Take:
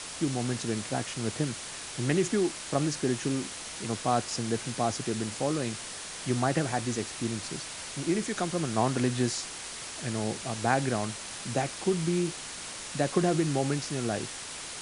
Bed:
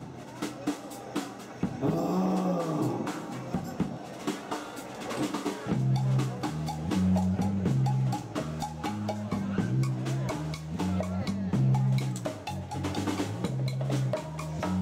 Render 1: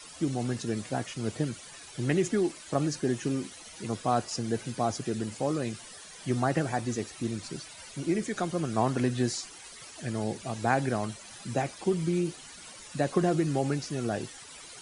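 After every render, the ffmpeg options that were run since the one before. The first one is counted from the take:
ffmpeg -i in.wav -af "afftdn=noise_reduction=13:noise_floor=-40" out.wav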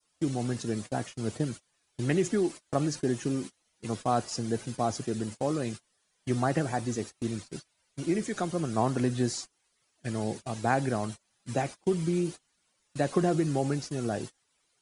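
ffmpeg -i in.wav -af "agate=range=-27dB:threshold=-37dB:ratio=16:detection=peak,adynamicequalizer=threshold=0.00355:dfrequency=2400:dqfactor=0.83:tfrequency=2400:tqfactor=0.83:attack=5:release=100:ratio=0.375:range=2:mode=cutabove:tftype=bell" out.wav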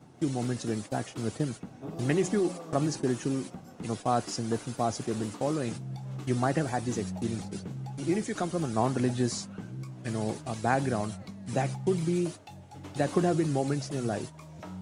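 ffmpeg -i in.wav -i bed.wav -filter_complex "[1:a]volume=-12dB[link_01];[0:a][link_01]amix=inputs=2:normalize=0" out.wav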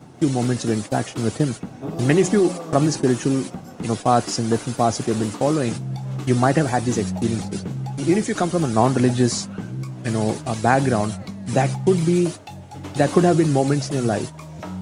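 ffmpeg -i in.wav -af "volume=10dB,alimiter=limit=-2dB:level=0:latency=1" out.wav

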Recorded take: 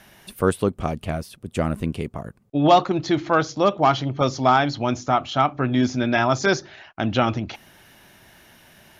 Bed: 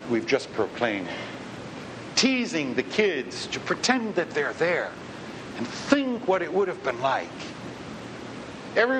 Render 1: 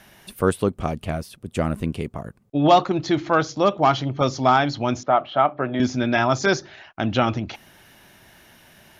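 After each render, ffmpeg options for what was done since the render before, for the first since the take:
ffmpeg -i in.wav -filter_complex "[0:a]asettb=1/sr,asplit=3[link_01][link_02][link_03];[link_01]atrim=end=5.034[link_04];[link_02]atrim=start=5.03:end=5.8,asetpts=PTS-STARTPTS,afade=type=in:duration=0.004:curve=qsin,afade=type=out:start_time=0.766:duration=0.004:curve=qsin,highpass=190,equalizer=frequency=260:width_type=q:width=4:gain=-5,equalizer=frequency=600:width_type=q:width=4:gain=7,equalizer=frequency=2500:width_type=q:width=4:gain=-5,lowpass=frequency=3100:width=0.5412,lowpass=frequency=3100:width=1.3066[link_05];[link_03]atrim=start=5.796[link_06];[link_04][link_05]acrossfade=duration=0.004:curve1=hsin:curve2=qsin[link_07];[link_07][link_06]acrossfade=duration=0.004:curve1=qsin:curve2=hsin" out.wav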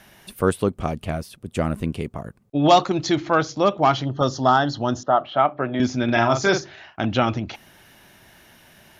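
ffmpeg -i in.wav -filter_complex "[0:a]asettb=1/sr,asplit=3[link_01][link_02][link_03];[link_01]atrim=end=2.634[link_04];[link_02]atrim=start=2.63:end=3.16,asetpts=PTS-STARTPTS,afade=type=in:duration=0.004:curve=qsin,afade=type=out:start_time=0.526:duration=0.004:curve=qsin,equalizer=frequency=7300:width=0.66:gain=8[link_05];[link_03]atrim=start=3.156[link_06];[link_04][link_05]acrossfade=duration=0.004:curve1=hsin:curve2=qsin[link_07];[link_07][link_06]acrossfade=duration=0.004:curve1=qsin:curve2=hsin,asettb=1/sr,asplit=3[link_08][link_09][link_10];[link_08]atrim=end=4.064[link_11];[link_09]atrim=start=4.06:end=5.24,asetpts=PTS-STARTPTS,afade=type=in:duration=0.004:curve=qsin,afade=type=out:start_time=1.176:duration=0.004:curve=qsin,asuperstop=centerf=2300:order=4:qfactor=2.5[link_12];[link_10]atrim=start=5.236[link_13];[link_11][link_12]acrossfade=duration=0.004:curve1=hsin:curve2=qsin[link_14];[link_14][link_13]acrossfade=duration=0.004:curve1=qsin:curve2=hsin,asettb=1/sr,asplit=3[link_15][link_16][link_17];[link_15]atrim=end=6.044[link_18];[link_16]atrim=start=6.04:end=7.05,asetpts=PTS-STARTPTS,afade=type=in:duration=0.004:curve=qsin,afade=type=out:start_time=1.006:duration=0.004:curve=qsin,asplit=2[link_19][link_20];[link_20]adelay=43,volume=-7dB[link_21];[link_19][link_21]amix=inputs=2:normalize=0,atrim=end_sample=44541[link_22];[link_17]atrim=start=7.046[link_23];[link_18][link_22]acrossfade=duration=0.004:curve1=hsin:curve2=qsin[link_24];[link_24][link_23]acrossfade=duration=0.004:curve1=qsin:curve2=hsin" out.wav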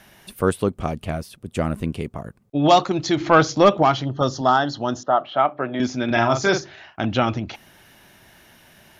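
ffmpeg -i in.wav -filter_complex "[0:a]asettb=1/sr,asplit=3[link_01][link_02][link_03];[link_01]atrim=end=3.204[link_04];[link_02]atrim=start=3.2:end=3.83,asetpts=PTS-STARTPTS,afade=type=in:duration=0.004:curve=qsin,afade=type=out:start_time=0.626:duration=0.004:curve=qsin,acontrast=54[link_05];[link_03]atrim=start=3.826[link_06];[link_04][link_05]acrossfade=duration=0.004:curve1=hsin:curve2=qsin[link_07];[link_07][link_06]acrossfade=duration=0.004:curve1=qsin:curve2=hsin,asettb=1/sr,asplit=3[link_08][link_09][link_10];[link_08]atrim=end=4.414[link_11];[link_09]atrim=start=4.41:end=6.11,asetpts=PTS-STARTPTS,afade=type=in:duration=0.004:curve=qsin,afade=type=out:start_time=1.696:duration=0.004:curve=qsin,highpass=frequency=170:poles=1[link_12];[link_10]atrim=start=6.106[link_13];[link_11][link_12]acrossfade=duration=0.004:curve1=hsin:curve2=qsin[link_14];[link_14][link_13]acrossfade=duration=0.004:curve1=qsin:curve2=hsin" out.wav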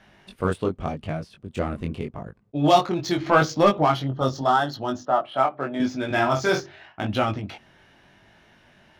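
ffmpeg -i in.wav -af "adynamicsmooth=sensitivity=5:basefreq=4400,flanger=delay=19:depth=3.9:speed=0.83" out.wav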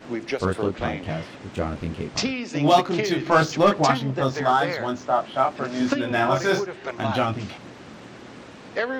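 ffmpeg -i in.wav -i bed.wav -filter_complex "[1:a]volume=-4.5dB[link_01];[0:a][link_01]amix=inputs=2:normalize=0" out.wav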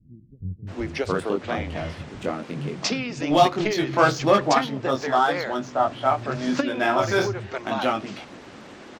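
ffmpeg -i in.wav -filter_complex "[0:a]acrossover=split=160[link_01][link_02];[link_02]adelay=670[link_03];[link_01][link_03]amix=inputs=2:normalize=0" out.wav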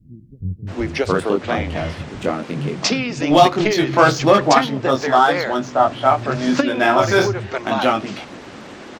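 ffmpeg -i in.wav -af "volume=6.5dB,alimiter=limit=-1dB:level=0:latency=1" out.wav

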